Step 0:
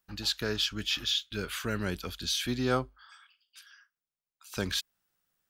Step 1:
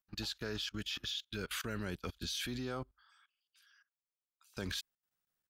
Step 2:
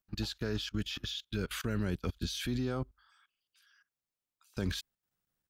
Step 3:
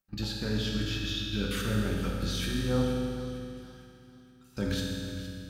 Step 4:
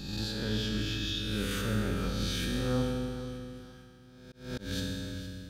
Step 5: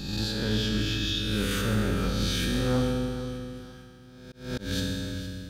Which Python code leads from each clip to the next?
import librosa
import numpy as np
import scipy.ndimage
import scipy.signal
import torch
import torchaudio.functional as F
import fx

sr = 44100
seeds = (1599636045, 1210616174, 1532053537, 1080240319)

y1 = fx.level_steps(x, sr, step_db=20)
y1 = fx.upward_expand(y1, sr, threshold_db=-57.0, expansion=1.5)
y1 = y1 * librosa.db_to_amplitude(1.5)
y2 = fx.low_shelf(y1, sr, hz=410.0, db=9.5)
y3 = fx.echo_feedback(y2, sr, ms=462, feedback_pct=39, wet_db=-13.5)
y3 = fx.rev_fdn(y3, sr, rt60_s=2.4, lf_ratio=1.45, hf_ratio=0.95, size_ms=11.0, drr_db=-3.0)
y4 = fx.spec_swells(y3, sr, rise_s=1.12)
y4 = fx.auto_swell(y4, sr, attack_ms=207.0)
y4 = y4 * librosa.db_to_amplitude(-3.5)
y5 = np.clip(y4, -10.0 ** (-23.5 / 20.0), 10.0 ** (-23.5 / 20.0))
y5 = y5 * librosa.db_to_amplitude(5.0)